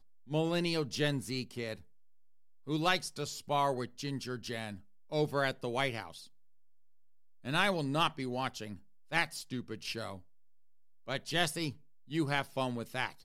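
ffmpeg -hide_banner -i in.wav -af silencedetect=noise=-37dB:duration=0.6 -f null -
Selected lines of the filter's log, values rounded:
silence_start: 1.74
silence_end: 2.68 | silence_duration: 0.95
silence_start: 6.10
silence_end: 7.45 | silence_duration: 1.35
silence_start: 10.15
silence_end: 11.09 | silence_duration: 0.94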